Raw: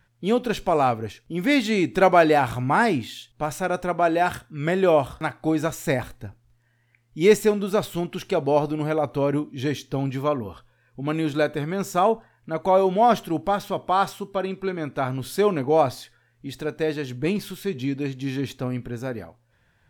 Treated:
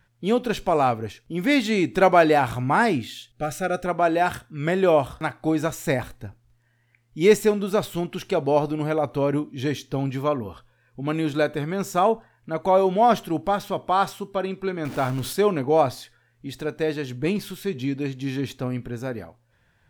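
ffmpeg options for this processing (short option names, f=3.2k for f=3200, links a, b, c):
-filter_complex "[0:a]asettb=1/sr,asplit=3[a][b][c];[a]atrim=end=2.974[d];[b]atrim=start=2.97:end=3.86,asetpts=PTS-STARTPTS,afade=t=in:d=0.004:c=qsin,afade=t=out:st=0.886:d=0.004:c=qsin,asuperstop=centerf=970:order=12:qfactor=2.6[e];[c]atrim=start=3.856[f];[d][e]acrossfade=d=0.004:c1=hsin:c2=qsin[g];[g][f]acrossfade=d=0.004:c1=qsin:c2=hsin,asettb=1/sr,asplit=3[h][i][j];[h]atrim=end=14.854[k];[i]atrim=start=14.85:end=15.33,asetpts=PTS-STARTPTS,afade=t=in:d=0.004:c=qsin,afade=t=out:st=0.476:d=0.004:c=qsin,aeval=exprs='val(0)+0.5*0.0266*sgn(val(0))':c=same[l];[j]atrim=start=15.326[m];[k][l]acrossfade=d=0.004:c1=hsin:c2=qsin[n];[n][m]acrossfade=d=0.004:c1=qsin:c2=hsin"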